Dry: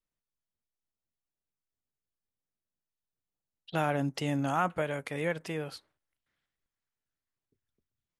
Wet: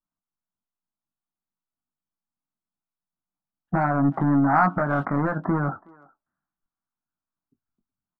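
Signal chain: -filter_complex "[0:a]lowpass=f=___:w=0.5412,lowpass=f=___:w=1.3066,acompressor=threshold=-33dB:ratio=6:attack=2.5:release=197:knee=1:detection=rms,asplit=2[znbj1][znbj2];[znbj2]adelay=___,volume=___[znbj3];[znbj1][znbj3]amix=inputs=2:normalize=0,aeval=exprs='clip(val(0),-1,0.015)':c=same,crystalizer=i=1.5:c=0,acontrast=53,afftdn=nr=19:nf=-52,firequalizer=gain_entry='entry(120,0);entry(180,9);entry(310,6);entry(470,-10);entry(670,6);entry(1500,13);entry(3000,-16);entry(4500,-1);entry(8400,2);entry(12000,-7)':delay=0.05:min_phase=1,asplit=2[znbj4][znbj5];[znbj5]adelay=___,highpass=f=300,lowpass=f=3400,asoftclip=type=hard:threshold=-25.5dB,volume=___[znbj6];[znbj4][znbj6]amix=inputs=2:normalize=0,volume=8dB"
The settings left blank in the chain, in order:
1200, 1200, 21, -7.5dB, 370, -24dB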